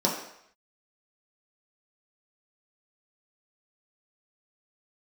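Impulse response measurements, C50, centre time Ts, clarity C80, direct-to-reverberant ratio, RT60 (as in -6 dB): 5.0 dB, 37 ms, 7.5 dB, -4.0 dB, 0.70 s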